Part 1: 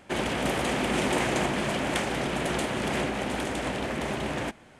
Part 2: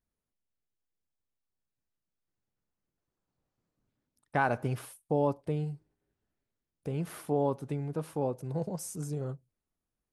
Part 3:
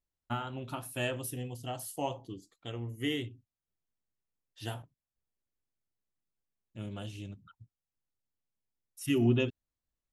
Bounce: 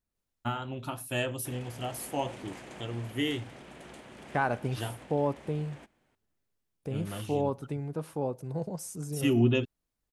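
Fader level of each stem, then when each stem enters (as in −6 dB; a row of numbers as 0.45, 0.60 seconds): −20.0, −0.5, +2.5 decibels; 1.35, 0.00, 0.15 seconds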